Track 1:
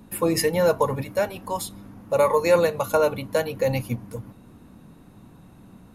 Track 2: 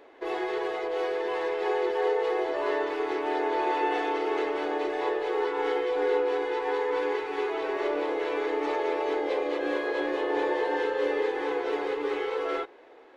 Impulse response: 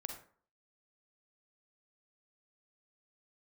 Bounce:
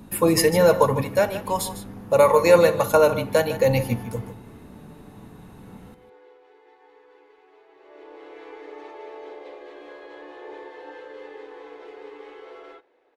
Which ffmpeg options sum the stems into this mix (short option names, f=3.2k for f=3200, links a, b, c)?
-filter_complex "[0:a]volume=1.5dB,asplit=4[a][b][c][d];[b]volume=-8.5dB[e];[c]volume=-11dB[f];[1:a]volume=-6dB,afade=t=in:st=7.69:d=0.58:silence=0.237137,asplit=3[g][h][i];[h]volume=-9.5dB[j];[i]volume=-8dB[k];[d]apad=whole_len=580562[l];[g][l]sidechaingate=range=-33dB:threshold=-38dB:ratio=16:detection=peak[m];[2:a]atrim=start_sample=2205[n];[e][j]amix=inputs=2:normalize=0[o];[o][n]afir=irnorm=-1:irlink=0[p];[f][k]amix=inputs=2:normalize=0,aecho=0:1:152:1[q];[a][m][p][q]amix=inputs=4:normalize=0"